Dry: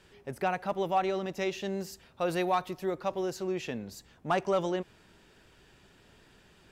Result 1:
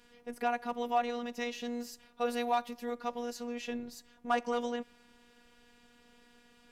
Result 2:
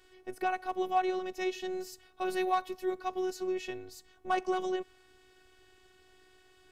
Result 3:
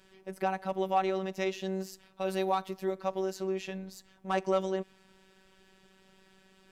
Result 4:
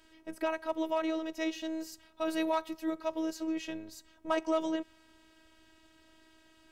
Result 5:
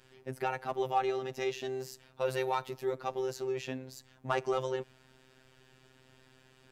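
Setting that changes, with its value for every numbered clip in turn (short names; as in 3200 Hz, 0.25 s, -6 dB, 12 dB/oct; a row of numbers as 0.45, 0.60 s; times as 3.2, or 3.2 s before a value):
robotiser, frequency: 240, 370, 190, 320, 130 Hz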